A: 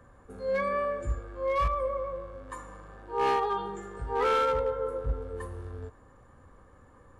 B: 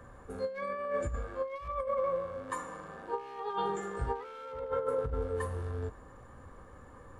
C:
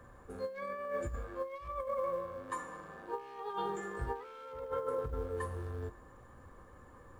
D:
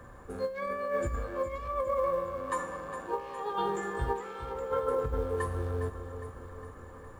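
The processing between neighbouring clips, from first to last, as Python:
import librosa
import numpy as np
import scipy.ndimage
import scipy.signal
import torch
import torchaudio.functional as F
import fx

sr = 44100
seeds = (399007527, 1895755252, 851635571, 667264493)

y1 = fx.hum_notches(x, sr, base_hz=50, count=7)
y1 = fx.over_compress(y1, sr, threshold_db=-33.0, ratio=-0.5)
y2 = fx.quant_companded(y1, sr, bits=8)
y2 = fx.comb_fb(y2, sr, f0_hz=350.0, decay_s=0.19, harmonics='odd', damping=0.0, mix_pct=60)
y2 = F.gain(torch.from_numpy(y2), 3.5).numpy()
y3 = fx.echo_feedback(y2, sr, ms=409, feedback_pct=58, wet_db=-11)
y3 = F.gain(torch.from_numpy(y3), 6.0).numpy()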